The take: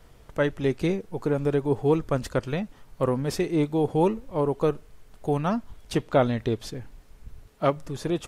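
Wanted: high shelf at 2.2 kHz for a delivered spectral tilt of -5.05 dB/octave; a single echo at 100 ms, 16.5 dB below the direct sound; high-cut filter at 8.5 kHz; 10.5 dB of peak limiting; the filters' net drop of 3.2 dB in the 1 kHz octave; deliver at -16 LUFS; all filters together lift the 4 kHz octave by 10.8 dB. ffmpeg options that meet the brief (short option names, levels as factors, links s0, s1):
-af "lowpass=8500,equalizer=f=1000:t=o:g=-6.5,highshelf=f=2200:g=8,equalizer=f=4000:t=o:g=6.5,alimiter=limit=0.119:level=0:latency=1,aecho=1:1:100:0.15,volume=4.73"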